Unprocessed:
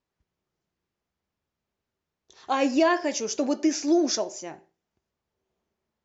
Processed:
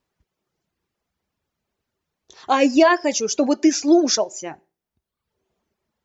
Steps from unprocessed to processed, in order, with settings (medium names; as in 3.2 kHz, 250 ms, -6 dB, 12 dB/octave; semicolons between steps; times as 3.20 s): reverb removal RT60 0.87 s; trim +7.5 dB